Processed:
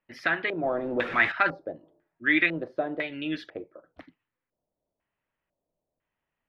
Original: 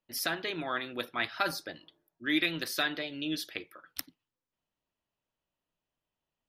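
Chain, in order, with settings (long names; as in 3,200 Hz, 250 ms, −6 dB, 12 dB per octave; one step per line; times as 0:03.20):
0:00.63–0:01.32: converter with a step at zero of −33.5 dBFS
auto-filter low-pass square 1 Hz 600–2,000 Hz
level +3 dB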